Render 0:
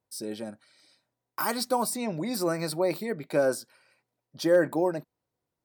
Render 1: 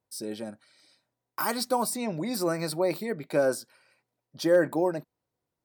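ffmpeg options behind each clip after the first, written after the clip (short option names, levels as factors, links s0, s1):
-af anull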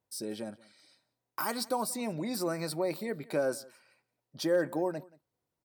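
-filter_complex "[0:a]asplit=2[s0][s1];[s1]acompressor=threshold=0.0224:ratio=6,volume=1.19[s2];[s0][s2]amix=inputs=2:normalize=0,aecho=1:1:178:0.0708,volume=0.398"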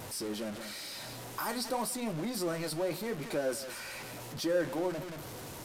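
-af "aeval=exprs='val(0)+0.5*0.0237*sgn(val(0))':c=same,flanger=delay=7.3:depth=9.1:regen=-62:speed=0.92:shape=triangular,aresample=32000,aresample=44100"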